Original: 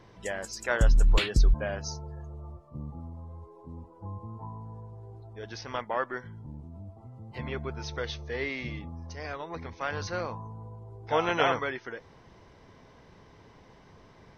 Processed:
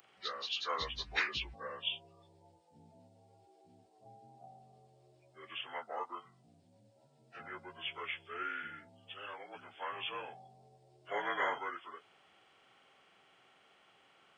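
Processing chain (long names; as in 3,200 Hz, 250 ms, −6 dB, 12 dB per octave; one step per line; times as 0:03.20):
partials spread apart or drawn together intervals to 81%
first difference
level +11 dB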